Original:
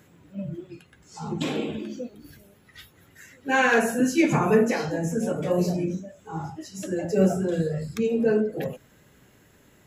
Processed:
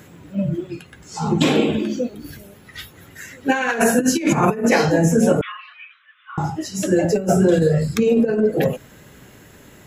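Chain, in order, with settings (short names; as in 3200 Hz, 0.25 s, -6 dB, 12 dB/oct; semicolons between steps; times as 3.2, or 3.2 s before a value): 5.41–6.38 Chebyshev band-pass 1100–3500 Hz, order 5; negative-ratio compressor -24 dBFS, ratio -0.5; gain +9 dB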